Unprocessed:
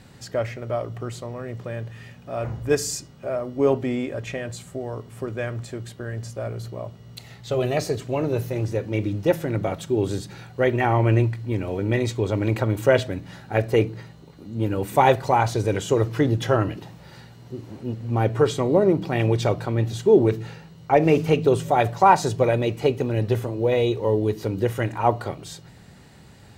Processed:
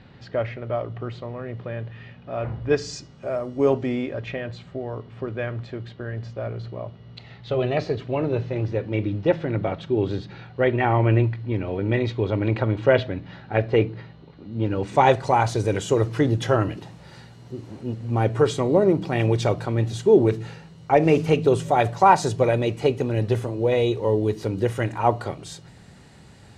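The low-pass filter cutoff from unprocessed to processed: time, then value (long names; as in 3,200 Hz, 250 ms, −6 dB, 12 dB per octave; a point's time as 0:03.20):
low-pass filter 24 dB per octave
0:02.65 3,900 Hz
0:03.42 9,600 Hz
0:04.33 4,100 Hz
0:14.50 4,100 Hz
0:15.37 11,000 Hz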